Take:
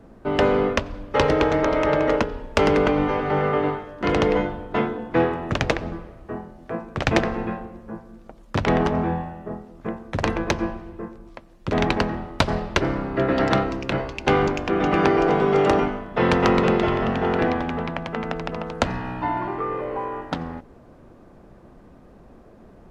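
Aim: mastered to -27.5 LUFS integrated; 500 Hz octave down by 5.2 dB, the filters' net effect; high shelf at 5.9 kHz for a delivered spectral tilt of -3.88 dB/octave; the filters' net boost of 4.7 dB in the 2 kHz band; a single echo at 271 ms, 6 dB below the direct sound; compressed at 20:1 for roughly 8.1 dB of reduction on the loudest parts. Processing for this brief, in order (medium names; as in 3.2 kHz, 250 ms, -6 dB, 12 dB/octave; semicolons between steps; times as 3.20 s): peaking EQ 500 Hz -7 dB; peaking EQ 2 kHz +5.5 dB; treble shelf 5.9 kHz +6.5 dB; compression 20:1, threshold -24 dBFS; delay 271 ms -6 dB; trim +2 dB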